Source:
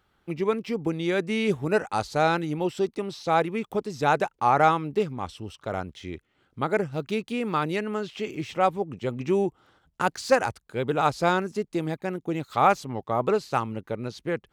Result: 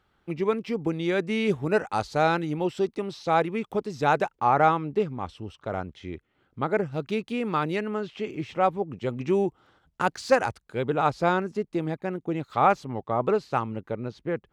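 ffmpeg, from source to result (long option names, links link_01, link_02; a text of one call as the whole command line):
ffmpeg -i in.wav -af "asetnsamples=nb_out_samples=441:pad=0,asendcmd='4.39 lowpass f 2400;6.86 lowpass f 4600;7.88 lowpass f 2500;9 lowpass f 5700;10.88 lowpass f 2500;14 lowpass f 1500',lowpass=frequency=5400:poles=1" out.wav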